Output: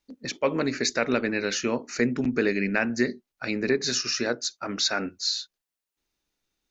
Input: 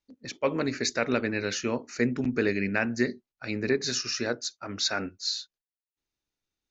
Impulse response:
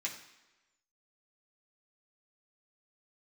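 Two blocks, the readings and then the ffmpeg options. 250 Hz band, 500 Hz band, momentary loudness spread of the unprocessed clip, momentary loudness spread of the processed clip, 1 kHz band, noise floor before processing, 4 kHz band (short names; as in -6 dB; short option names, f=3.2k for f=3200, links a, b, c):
+2.5 dB, +2.5 dB, 7 LU, 6 LU, +2.5 dB, under -85 dBFS, +3.0 dB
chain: -filter_complex "[0:a]equalizer=f=100:w=4.8:g=-14,asplit=2[a][b];[b]acompressor=threshold=-37dB:ratio=6,volume=2.5dB[c];[a][c]amix=inputs=2:normalize=0"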